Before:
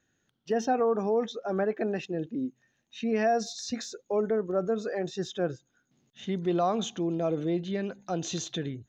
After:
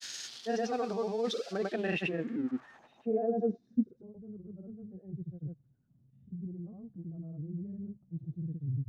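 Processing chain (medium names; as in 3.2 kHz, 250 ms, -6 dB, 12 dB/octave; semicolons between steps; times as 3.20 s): zero-crossing glitches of -32.5 dBFS; reverse; compression, threshold -33 dBFS, peak gain reduction 11 dB; reverse; low-pass sweep 4.8 kHz -> 120 Hz, 1.63–4.20 s; granulator, pitch spread up and down by 0 st; trim +4 dB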